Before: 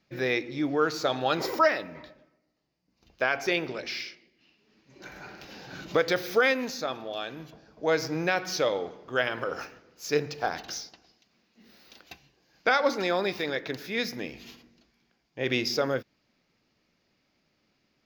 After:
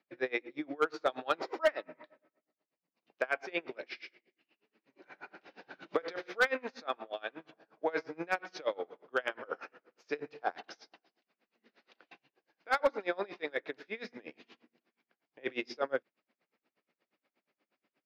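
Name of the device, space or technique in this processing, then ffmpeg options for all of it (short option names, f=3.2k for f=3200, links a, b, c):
helicopter radio: -filter_complex "[0:a]highpass=f=110:w=0.5412,highpass=f=110:w=1.3066,asettb=1/sr,asplit=3[a][b][c];[a]atrim=end=6.024[d];[b]atrim=start=6.02:end=8.03,asetpts=PTS-STARTPTS,afade=t=in:d=0.004:c=qsin,afade=t=out:st=2.006:d=0.004:c=qsin,equalizer=f=1.4k:w=0.43:g=4[e];[c]atrim=start=8.026[f];[d][e]acrossfade=d=0.004:c1=hsin:c2=qsin[g];[g][f]acrossfade=d=0.004:c1=qsin:c2=hsin,highpass=330,lowpass=2.6k,aeval=exprs='val(0)*pow(10,-28*(0.5-0.5*cos(2*PI*8.4*n/s))/20)':c=same,asoftclip=type=hard:threshold=-19dB"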